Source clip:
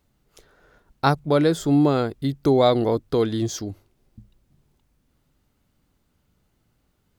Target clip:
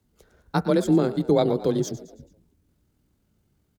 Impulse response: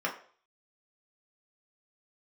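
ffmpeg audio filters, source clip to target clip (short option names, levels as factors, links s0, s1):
-filter_complex "[0:a]firequalizer=gain_entry='entry(280,0);entry(810,-6);entry(6700,-1)':delay=0.05:min_phase=1,afreqshift=27,asplit=5[s0][s1][s2][s3][s4];[s1]adelay=205,afreqshift=48,volume=0.158[s5];[s2]adelay=410,afreqshift=96,volume=0.0794[s6];[s3]adelay=615,afreqshift=144,volume=0.0398[s7];[s4]adelay=820,afreqshift=192,volume=0.0197[s8];[s0][s5][s6][s7][s8]amix=inputs=5:normalize=0,atempo=1.9,asplit=2[s9][s10];[1:a]atrim=start_sample=2205,asetrate=61740,aresample=44100,lowpass=2400[s11];[s10][s11]afir=irnorm=-1:irlink=0,volume=0.119[s12];[s9][s12]amix=inputs=2:normalize=0"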